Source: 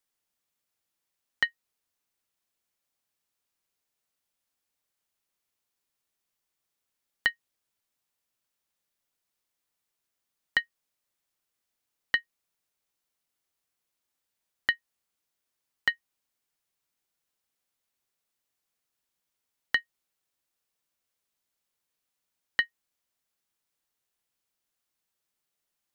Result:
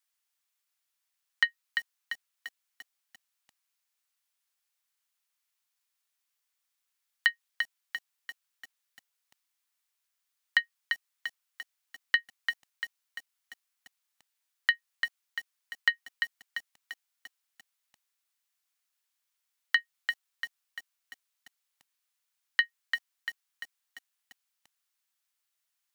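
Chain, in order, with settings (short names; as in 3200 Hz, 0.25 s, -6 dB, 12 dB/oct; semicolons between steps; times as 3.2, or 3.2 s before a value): HPF 1100 Hz 12 dB/oct; lo-fi delay 0.344 s, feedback 55%, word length 8-bit, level -5.5 dB; gain +1.5 dB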